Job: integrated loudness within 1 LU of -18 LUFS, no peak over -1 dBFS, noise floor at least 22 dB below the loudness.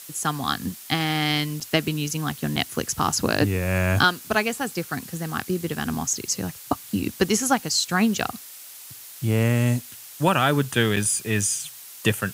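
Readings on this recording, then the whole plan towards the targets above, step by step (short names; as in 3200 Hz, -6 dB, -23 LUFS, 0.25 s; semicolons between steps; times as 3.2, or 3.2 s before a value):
dropouts 3; longest dropout 5.7 ms; noise floor -42 dBFS; noise floor target -46 dBFS; loudness -24.0 LUFS; peak -6.0 dBFS; loudness target -18.0 LUFS
-> interpolate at 1.6/2.56/10.96, 5.7 ms; denoiser 6 dB, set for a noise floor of -42 dBFS; gain +6 dB; limiter -1 dBFS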